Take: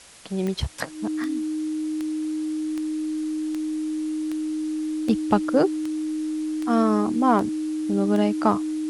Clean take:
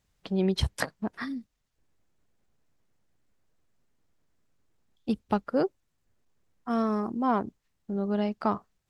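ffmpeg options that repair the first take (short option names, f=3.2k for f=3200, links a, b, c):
-af "adeclick=t=4,bandreject=f=310:w=30,afwtdn=0.005,asetnsamples=n=441:p=0,asendcmd='2.65 volume volume -6.5dB',volume=0dB"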